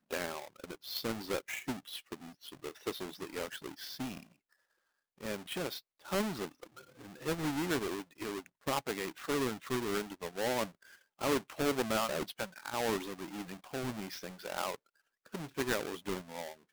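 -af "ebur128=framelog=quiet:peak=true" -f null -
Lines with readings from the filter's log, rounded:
Integrated loudness:
  I:         -37.6 LUFS
  Threshold: -47.9 LUFS
Loudness range:
  LRA:         7.3 LU
  Threshold: -57.9 LUFS
  LRA low:   -42.5 LUFS
  LRA high:  -35.2 LUFS
True peak:
  Peak:      -21.7 dBFS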